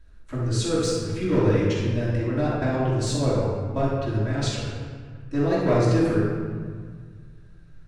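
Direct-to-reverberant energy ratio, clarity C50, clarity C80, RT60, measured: −10.5 dB, −2.5 dB, 1.0 dB, 1.7 s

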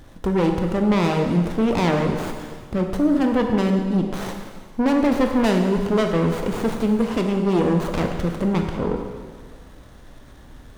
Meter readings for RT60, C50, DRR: 1.7 s, 4.5 dB, 3.0 dB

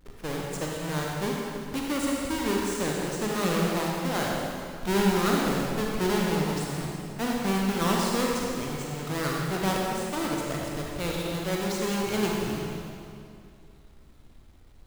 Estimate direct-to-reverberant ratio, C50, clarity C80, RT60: −2.5 dB, −1.5 dB, 0.0 dB, 2.5 s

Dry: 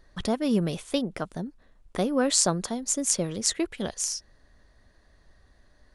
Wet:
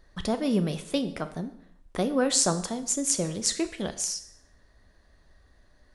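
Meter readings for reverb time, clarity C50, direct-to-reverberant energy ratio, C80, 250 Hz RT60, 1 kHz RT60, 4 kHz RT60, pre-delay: 0.70 s, 13.0 dB, 9.0 dB, 15.5 dB, 0.70 s, 0.70 s, 0.65 s, 5 ms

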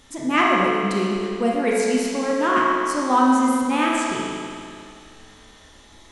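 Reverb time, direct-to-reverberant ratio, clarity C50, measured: 2.4 s, −4.5 dB, −2.5 dB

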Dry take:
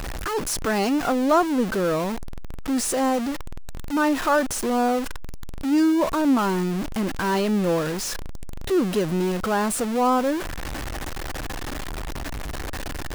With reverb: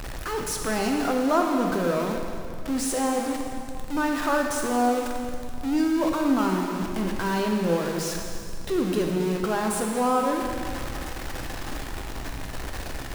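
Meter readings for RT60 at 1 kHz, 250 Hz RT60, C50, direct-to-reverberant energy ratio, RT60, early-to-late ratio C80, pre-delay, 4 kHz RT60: 2.4 s, 2.4 s, 2.5 dB, 1.5 dB, 2.3 s, 3.5 dB, 6 ms, 2.2 s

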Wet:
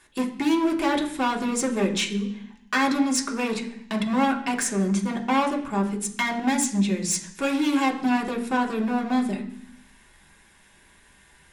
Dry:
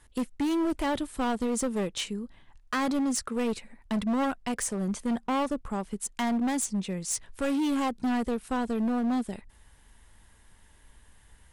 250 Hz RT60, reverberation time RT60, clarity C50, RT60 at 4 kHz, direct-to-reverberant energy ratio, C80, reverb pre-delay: 0.95 s, 0.65 s, 11.0 dB, 0.80 s, −0.5 dB, 14.0 dB, 3 ms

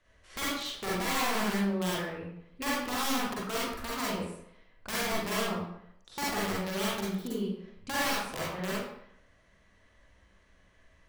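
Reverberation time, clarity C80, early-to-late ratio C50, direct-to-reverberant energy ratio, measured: 0.70 s, 2.5 dB, −2.5 dB, −7.0 dB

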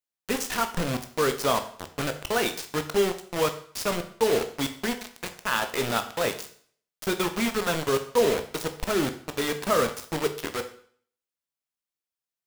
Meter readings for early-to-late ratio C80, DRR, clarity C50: 15.5 dB, 7.0 dB, 12.0 dB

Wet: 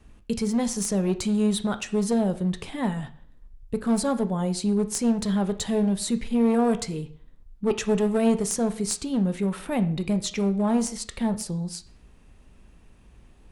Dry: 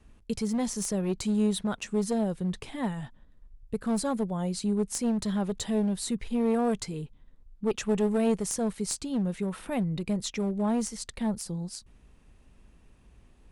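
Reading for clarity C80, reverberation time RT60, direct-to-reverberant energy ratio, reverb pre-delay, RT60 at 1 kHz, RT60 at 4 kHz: 18.5 dB, 0.50 s, 10.0 dB, 5 ms, 0.50 s, 0.45 s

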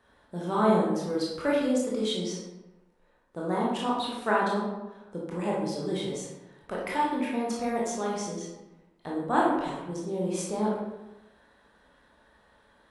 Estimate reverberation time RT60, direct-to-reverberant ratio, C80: 1.0 s, −5.0 dB, 4.5 dB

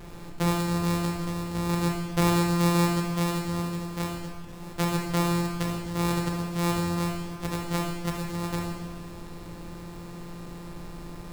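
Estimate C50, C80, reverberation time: 2.5 dB, 4.5 dB, 1.6 s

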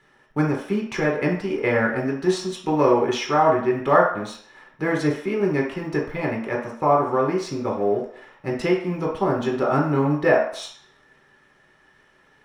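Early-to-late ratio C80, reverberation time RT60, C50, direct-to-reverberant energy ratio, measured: 9.0 dB, 0.60 s, 4.5 dB, −3.0 dB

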